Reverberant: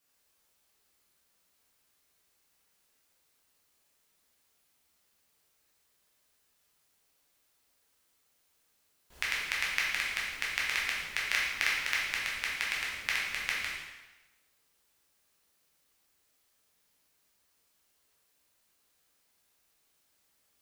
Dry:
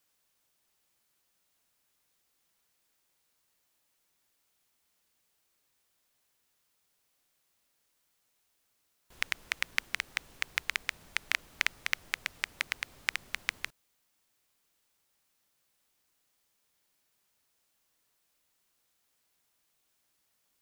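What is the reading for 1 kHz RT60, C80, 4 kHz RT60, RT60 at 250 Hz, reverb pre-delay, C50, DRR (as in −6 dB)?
1.1 s, 3.5 dB, 1.0 s, 1.0 s, 5 ms, 0.5 dB, −6.0 dB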